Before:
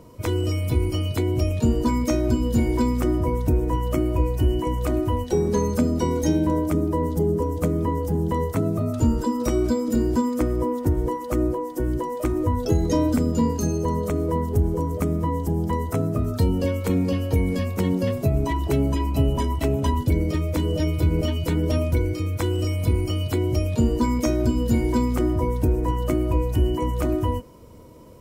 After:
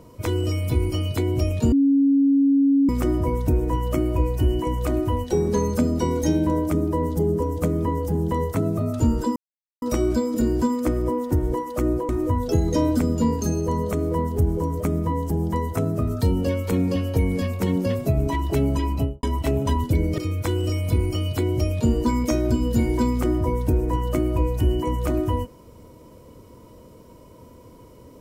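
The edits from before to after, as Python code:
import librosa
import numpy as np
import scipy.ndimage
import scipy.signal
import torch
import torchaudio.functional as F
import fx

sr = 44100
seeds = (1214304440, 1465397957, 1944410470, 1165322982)

y = fx.studio_fade_out(x, sr, start_s=19.09, length_s=0.31)
y = fx.edit(y, sr, fx.bleep(start_s=1.72, length_s=1.17, hz=277.0, db=-14.0),
    fx.insert_silence(at_s=9.36, length_s=0.46),
    fx.cut(start_s=11.63, length_s=0.63),
    fx.cut(start_s=20.35, length_s=1.78), tone=tone)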